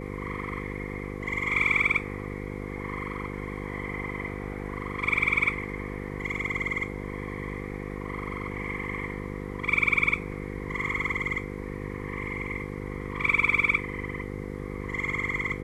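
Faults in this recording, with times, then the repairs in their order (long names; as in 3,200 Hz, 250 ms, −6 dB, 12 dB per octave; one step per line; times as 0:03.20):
mains buzz 50 Hz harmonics 10 −36 dBFS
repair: hum removal 50 Hz, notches 10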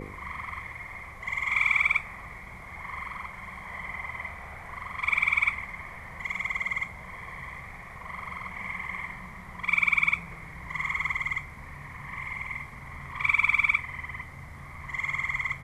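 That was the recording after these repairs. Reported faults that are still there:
none of them is left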